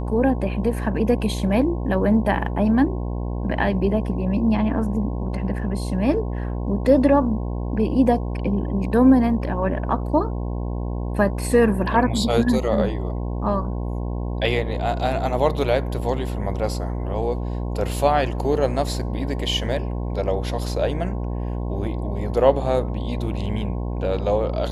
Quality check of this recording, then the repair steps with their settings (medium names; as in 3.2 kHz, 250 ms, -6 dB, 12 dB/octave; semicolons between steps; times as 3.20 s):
buzz 60 Hz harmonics 18 -26 dBFS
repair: de-hum 60 Hz, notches 18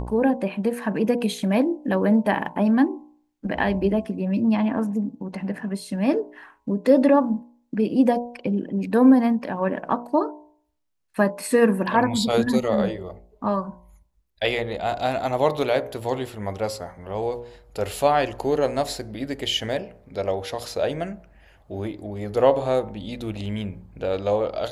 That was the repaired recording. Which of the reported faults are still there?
nothing left